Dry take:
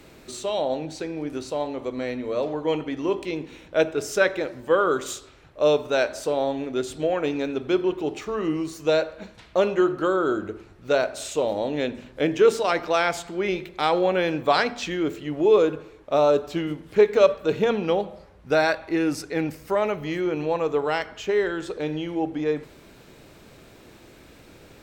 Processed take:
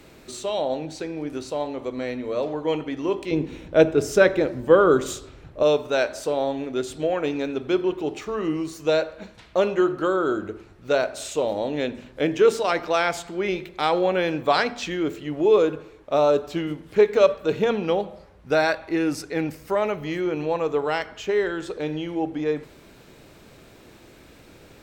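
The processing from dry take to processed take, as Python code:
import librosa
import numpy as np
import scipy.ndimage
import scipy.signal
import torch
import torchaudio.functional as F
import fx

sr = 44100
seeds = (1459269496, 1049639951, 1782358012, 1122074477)

y = fx.low_shelf(x, sr, hz=480.0, db=11.0, at=(3.31, 5.63))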